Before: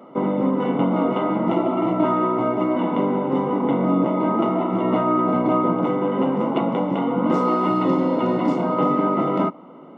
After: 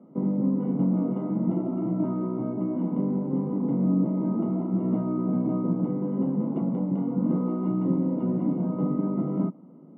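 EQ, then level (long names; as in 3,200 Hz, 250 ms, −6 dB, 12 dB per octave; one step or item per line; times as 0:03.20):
resonant band-pass 170 Hz, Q 1.8
high-frequency loss of the air 79 metres
+1.0 dB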